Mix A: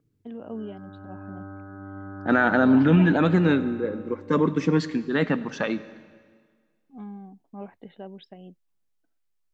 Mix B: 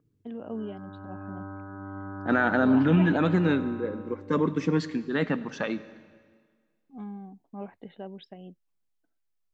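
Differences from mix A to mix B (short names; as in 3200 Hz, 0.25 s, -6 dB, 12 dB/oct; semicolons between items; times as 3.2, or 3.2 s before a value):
second voice -3.5 dB; background: add bell 1000 Hz +12 dB 0.21 oct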